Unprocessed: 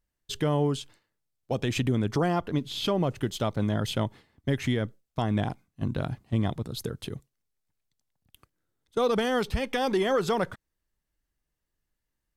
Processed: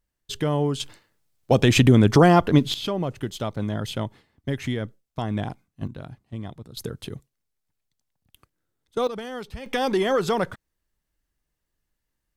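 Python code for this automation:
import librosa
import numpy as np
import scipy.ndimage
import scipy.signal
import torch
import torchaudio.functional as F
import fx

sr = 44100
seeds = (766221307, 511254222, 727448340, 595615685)

y = fx.gain(x, sr, db=fx.steps((0.0, 2.0), (0.8, 11.0), (2.74, -0.5), (5.87, -8.0), (6.77, 1.0), (9.07, -8.0), (9.66, 3.0)))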